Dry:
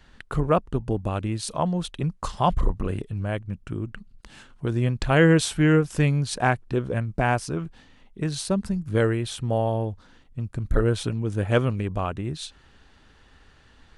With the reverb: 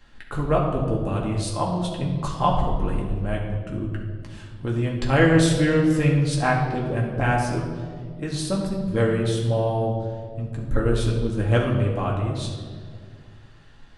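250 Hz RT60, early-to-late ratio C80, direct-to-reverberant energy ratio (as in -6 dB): 2.5 s, 5.5 dB, -2.5 dB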